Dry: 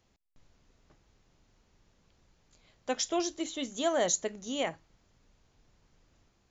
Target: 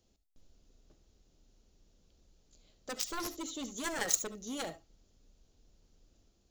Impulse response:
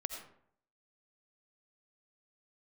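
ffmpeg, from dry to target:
-filter_complex "[0:a]acrusher=bits=9:mode=log:mix=0:aa=0.000001,equalizer=frequency=125:width_type=o:width=1:gain=-7,equalizer=frequency=1000:width_type=o:width=1:gain=-10,equalizer=frequency=2000:width_type=o:width=1:gain=-11,aeval=exprs='0.158*(cos(1*acos(clip(val(0)/0.158,-1,1)))-cos(1*PI/2))+0.0447*(cos(7*acos(clip(val(0)/0.158,-1,1)))-cos(7*PI/2))':channel_layout=same[link_01];[1:a]atrim=start_sample=2205,atrim=end_sample=3528[link_02];[link_01][link_02]afir=irnorm=-1:irlink=0,volume=2.5dB"

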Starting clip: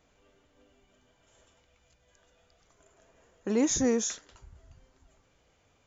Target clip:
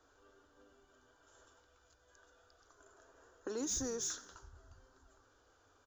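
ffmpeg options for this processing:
ffmpeg -i in.wav -filter_complex "[0:a]firequalizer=gain_entry='entry(100,0);entry(180,-22);entry(270,-2);entry(400,-2);entry(610,-9);entry(1500,0);entry(2100,-21);entry(3500,-8);entry(5000,-3)':delay=0.05:min_phase=1,acrossover=split=140|3000[link_01][link_02][link_03];[link_02]acompressor=threshold=-45dB:ratio=3[link_04];[link_01][link_04][link_03]amix=inputs=3:normalize=0,asplit=2[link_05][link_06];[link_06]highpass=frequency=720:poles=1,volume=13dB,asoftclip=type=tanh:threshold=-25dB[link_07];[link_05][link_07]amix=inputs=2:normalize=0,lowpass=frequency=3000:poles=1,volume=-6dB,asplit=2[link_08][link_09];[link_09]asplit=4[link_10][link_11][link_12][link_13];[link_10]adelay=88,afreqshift=-71,volume=-19dB[link_14];[link_11]adelay=176,afreqshift=-142,volume=-24.4dB[link_15];[link_12]adelay=264,afreqshift=-213,volume=-29.7dB[link_16];[link_13]adelay=352,afreqshift=-284,volume=-35.1dB[link_17];[link_14][link_15][link_16][link_17]amix=inputs=4:normalize=0[link_18];[link_08][link_18]amix=inputs=2:normalize=0" out.wav

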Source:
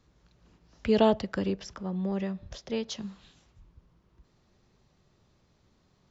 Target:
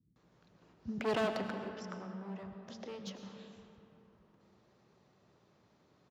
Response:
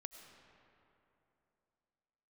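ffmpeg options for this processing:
-filter_complex "[0:a]volume=29.5dB,asoftclip=hard,volume=-29.5dB,highshelf=frequency=2500:gain=-9,asettb=1/sr,asplit=3[link_01][link_02][link_03];[link_01]atrim=end=1.324[link_04];[link_02]atrim=start=1.32:end=3.07,asetpts=PTS-STARTPTS,afade=type=in:duration=0.004:curve=qsin,afade=type=out:start_time=1.746:duration=0.004:curve=qsin,acompressor=threshold=-44dB:ratio=6[link_05];[link_03]atrim=start=3.066[link_06];[link_04][link_05]acrossfade=duration=0.004:curve1=hsin:curve2=qsin[link_07];[link_07][link_06]acrossfade=duration=0.004:curve1=qsin:curve2=hsin,highpass=170,acrossover=split=240[link_08][link_09];[link_09]adelay=160[link_10];[link_08][link_10]amix=inputs=2:normalize=0[link_11];[1:a]atrim=start_sample=2205[link_12];[link_11][link_12]afir=irnorm=-1:irlink=0,volume=8dB"

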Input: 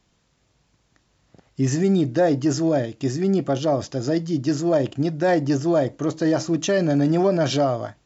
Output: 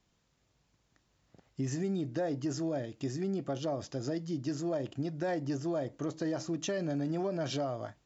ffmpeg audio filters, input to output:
ffmpeg -i in.wav -af "acompressor=threshold=-24dB:ratio=2.5,volume=-8.5dB" out.wav

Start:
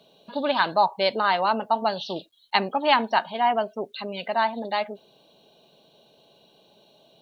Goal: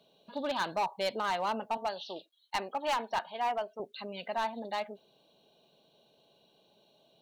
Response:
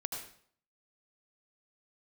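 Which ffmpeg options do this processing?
-filter_complex "[0:a]asettb=1/sr,asplit=3[link_01][link_02][link_03];[link_01]atrim=end=1.774[link_04];[link_02]atrim=start=1.77:end=3.8,asetpts=PTS-STARTPTS,afade=type=in:duration=0.004:curve=qsin,afade=type=out:start_time=2.026:duration=0.004:curve=qsin,bass=frequency=250:gain=-14,treble=frequency=4000:gain=-2[link_05];[link_03]atrim=start=3.796[link_06];[link_04][link_05]acrossfade=duration=0.004:curve1=hsin:curve2=qsin[link_07];[link_07][link_06]acrossfade=duration=0.004:curve1=qsin:curve2=hsin,asoftclip=type=hard:threshold=-17.5dB,volume=-8.5dB"

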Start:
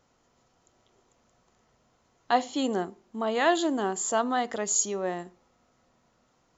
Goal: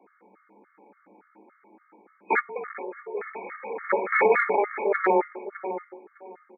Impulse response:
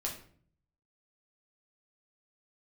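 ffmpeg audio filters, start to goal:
-filter_complex "[0:a]asplit=2[link_01][link_02];[1:a]atrim=start_sample=2205,lowpass=6400,lowshelf=frequency=140:gain=10.5[link_03];[link_02][link_03]afir=irnorm=-1:irlink=0,volume=-2.5dB[link_04];[link_01][link_04]amix=inputs=2:normalize=0,aeval=exprs='(mod(7.5*val(0)+1,2)-1)/7.5':channel_layout=same,asplit=2[link_05][link_06];[link_06]adelay=607,lowpass=frequency=1500:poles=1,volume=-10dB,asplit=2[link_07][link_08];[link_08]adelay=607,lowpass=frequency=1500:poles=1,volume=0.23,asplit=2[link_09][link_10];[link_10]adelay=607,lowpass=frequency=1500:poles=1,volume=0.23[link_11];[link_05][link_07][link_09][link_11]amix=inputs=4:normalize=0,asplit=3[link_12][link_13][link_14];[link_12]afade=type=out:start_time=2.39:duration=0.02[link_15];[link_13]acompressor=threshold=-37dB:ratio=12,afade=type=in:start_time=2.39:duration=0.02,afade=type=out:start_time=3.89:duration=0.02[link_16];[link_14]afade=type=in:start_time=3.89:duration=0.02[link_17];[link_15][link_16][link_17]amix=inputs=3:normalize=0,afreqshift=190,afftfilt=real='re*between(b*sr/4096,140,2500)':imag='im*between(b*sr/4096,140,2500)':win_size=4096:overlap=0.75,acontrast=21,bandreject=frequency=50:width_type=h:width=6,bandreject=frequency=100:width_type=h:width=6,bandreject=frequency=150:width_type=h:width=6,bandreject=frequency=200:width_type=h:width=6,bandreject=frequency=250:width_type=h:width=6,bandreject=frequency=300:width_type=h:width=6,bandreject=frequency=350:width_type=h:width=6,aecho=1:1:2.3:0.55,afftfilt=real='re*gt(sin(2*PI*3.5*pts/sr)*(1-2*mod(floor(b*sr/1024/1100),2)),0)':imag='im*gt(sin(2*PI*3.5*pts/sr)*(1-2*mod(floor(b*sr/1024/1100),2)),0)':win_size=1024:overlap=0.75,volume=1dB"

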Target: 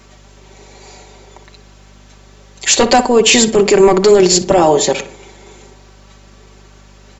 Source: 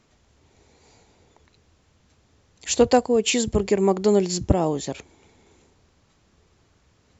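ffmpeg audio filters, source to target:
ffmpeg -i in.wav -filter_complex "[0:a]highpass=310,aecho=1:1:5.2:0.66,apsyclip=20.5dB,aeval=exprs='val(0)+0.00794*(sin(2*PI*50*n/s)+sin(2*PI*2*50*n/s)/2+sin(2*PI*3*50*n/s)/3+sin(2*PI*4*50*n/s)/4+sin(2*PI*5*50*n/s)/5)':channel_layout=same,asplit=2[link_01][link_02];[link_02]adelay=60,lowpass=frequency=2100:poles=1,volume=-11dB,asplit=2[link_03][link_04];[link_04]adelay=60,lowpass=frequency=2100:poles=1,volume=0.5,asplit=2[link_05][link_06];[link_06]adelay=60,lowpass=frequency=2100:poles=1,volume=0.5,asplit=2[link_07][link_08];[link_08]adelay=60,lowpass=frequency=2100:poles=1,volume=0.5,asplit=2[link_09][link_10];[link_10]adelay=60,lowpass=frequency=2100:poles=1,volume=0.5[link_11];[link_03][link_05][link_07][link_09][link_11]amix=inputs=5:normalize=0[link_12];[link_01][link_12]amix=inputs=2:normalize=0,volume=-4dB" out.wav

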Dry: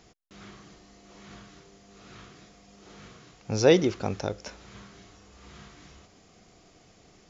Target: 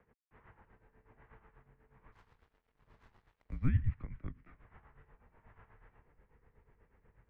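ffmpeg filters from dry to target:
ffmpeg -i in.wav -filter_complex "[0:a]highpass=frequency=290:width_type=q:width=0.5412,highpass=frequency=290:width_type=q:width=1.307,lowpass=frequency=2300:width_type=q:width=0.5176,lowpass=frequency=2300:width_type=q:width=0.7071,lowpass=frequency=2300:width_type=q:width=1.932,afreqshift=-260,acrossover=split=240|1600[link_01][link_02][link_03];[link_02]acompressor=threshold=-53dB:ratio=6[link_04];[link_01][link_04][link_03]amix=inputs=3:normalize=0,asettb=1/sr,asplit=3[link_05][link_06][link_07];[link_05]atrim=end=2.124[link_08];[link_06]atrim=start=2.12:end=3.7,asetpts=PTS-STARTPTS,afade=type=in:duration=0.004:curve=qsin,afade=type=out:start_time=1.576:duration=0.004:curve=qsin,aeval=exprs='sgn(val(0))*max(abs(val(0))-0.00126,0)':channel_layout=same[link_09];[link_07]atrim=start=3.696[link_10];[link_08][link_09]acrossfade=duration=0.004:curve1=hsin:curve2=qsin[link_11];[link_11][link_10]acrossfade=duration=0.004:curve1=qsin:curve2=hsin,tremolo=f=8.2:d=0.74,asubboost=boost=4:cutoff=95,volume=-6dB" out.wav

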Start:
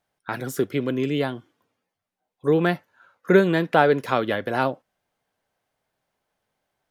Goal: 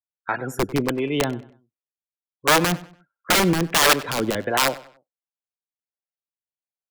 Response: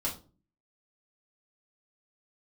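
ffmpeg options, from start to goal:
-filter_complex "[0:a]afftdn=noise_reduction=35:noise_floor=-37,aeval=exprs='(mod(5.01*val(0)+1,2)-1)/5.01':channel_layout=same,acontrast=74,acrossover=split=430[link_01][link_02];[link_01]aeval=exprs='val(0)*(1-0.7/2+0.7/2*cos(2*PI*1.4*n/s))':channel_layout=same[link_03];[link_02]aeval=exprs='val(0)*(1-0.7/2-0.7/2*cos(2*PI*1.4*n/s))':channel_layout=same[link_04];[link_03][link_04]amix=inputs=2:normalize=0,asplit=2[link_05][link_06];[link_06]adelay=96,lowpass=frequency=4900:poles=1,volume=-18dB,asplit=2[link_07][link_08];[link_08]adelay=96,lowpass=frequency=4900:poles=1,volume=0.36,asplit=2[link_09][link_10];[link_10]adelay=96,lowpass=frequency=4900:poles=1,volume=0.36[link_11];[link_05][link_07][link_09][link_11]amix=inputs=4:normalize=0,volume=-1dB"

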